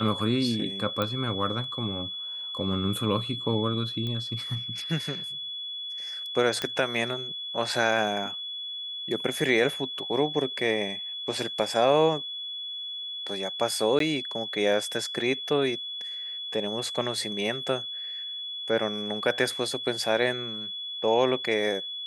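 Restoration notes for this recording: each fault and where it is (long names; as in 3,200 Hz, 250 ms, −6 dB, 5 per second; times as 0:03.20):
whistle 3,400 Hz −33 dBFS
0:01.02: click −14 dBFS
0:04.07: click −22 dBFS
0:06.62: click −13 dBFS
0:13.99–0:14.00: drop-out 13 ms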